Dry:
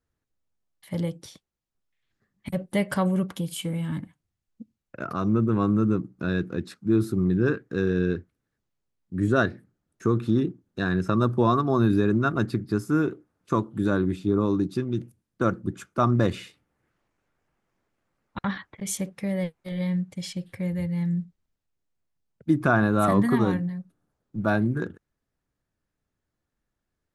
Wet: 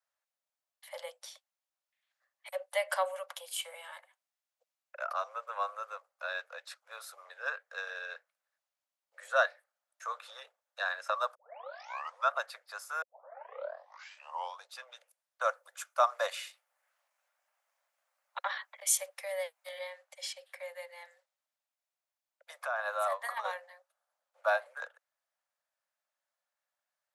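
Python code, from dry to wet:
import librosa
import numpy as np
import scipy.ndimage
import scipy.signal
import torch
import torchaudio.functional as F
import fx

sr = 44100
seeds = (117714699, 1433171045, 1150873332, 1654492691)

y = fx.high_shelf(x, sr, hz=6400.0, db=9.0, at=(15.44, 19.79))
y = fx.over_compress(y, sr, threshold_db=-23.0, ratio=-0.5, at=(22.55, 23.46), fade=0.02)
y = fx.edit(y, sr, fx.tape_start(start_s=11.35, length_s=0.95),
    fx.tape_start(start_s=13.02, length_s=1.66), tone=tone)
y = scipy.signal.sosfilt(scipy.signal.butter(16, 540.0, 'highpass', fs=sr, output='sos'), y)
y = F.gain(torch.from_numpy(y), -2.0).numpy()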